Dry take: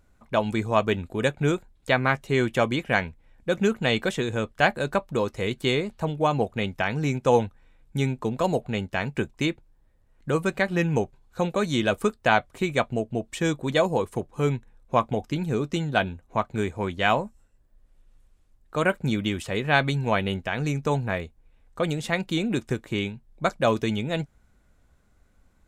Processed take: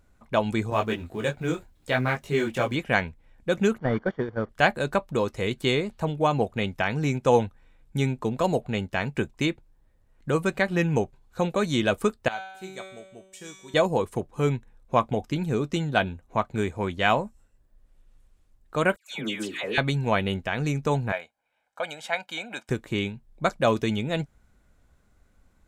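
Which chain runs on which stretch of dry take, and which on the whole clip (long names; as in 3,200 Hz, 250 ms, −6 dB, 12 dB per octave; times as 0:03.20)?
0:00.70–0:02.76: mu-law and A-law mismatch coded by mu + micro pitch shift up and down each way 21 cents
0:03.78–0:04.49: linear delta modulator 32 kbit/s, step −33.5 dBFS + noise gate −27 dBFS, range −15 dB + Savitzky-Golay smoothing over 41 samples
0:12.28–0:13.74: bass and treble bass −5 dB, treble +10 dB + tuned comb filter 190 Hz, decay 0.94 s, mix 90%
0:18.96–0:19.78: high-pass filter 310 Hz + mains-hum notches 60/120/180/240/300/360/420/480/540 Hz + all-pass dispersion lows, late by 147 ms, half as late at 1,400 Hz
0:21.12–0:22.69: high-pass filter 640 Hz + high-shelf EQ 3,700 Hz −8 dB + comb filter 1.3 ms, depth 67%
whole clip: no processing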